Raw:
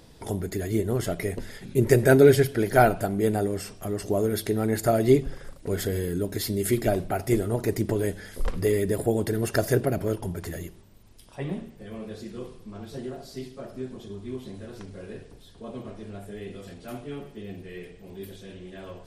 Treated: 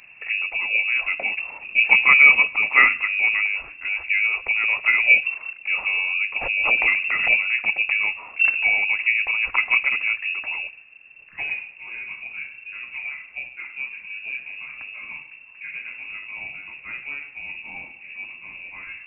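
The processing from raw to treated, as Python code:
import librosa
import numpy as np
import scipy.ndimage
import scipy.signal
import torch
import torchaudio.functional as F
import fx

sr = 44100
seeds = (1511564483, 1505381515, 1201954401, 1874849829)

y = fx.peak_eq(x, sr, hz=81.0, db=7.0, octaves=0.3)
y = fx.freq_invert(y, sr, carrier_hz=2700)
y = fx.pre_swell(y, sr, db_per_s=60.0, at=(6.41, 7.34))
y = F.gain(torch.from_numpy(y), 3.0).numpy()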